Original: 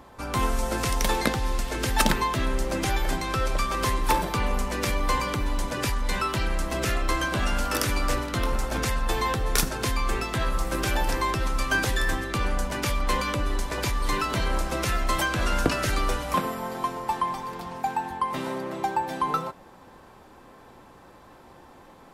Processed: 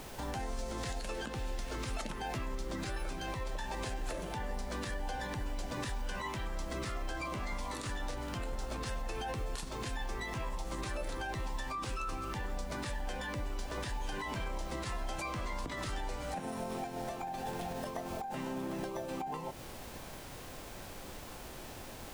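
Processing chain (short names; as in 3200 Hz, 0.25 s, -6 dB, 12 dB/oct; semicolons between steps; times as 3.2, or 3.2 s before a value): added noise pink -47 dBFS; compressor, threshold -33 dBFS, peak gain reduction 16 dB; limiter -27.5 dBFS, peak gain reduction 8 dB; formant shift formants -5 st; gain -1 dB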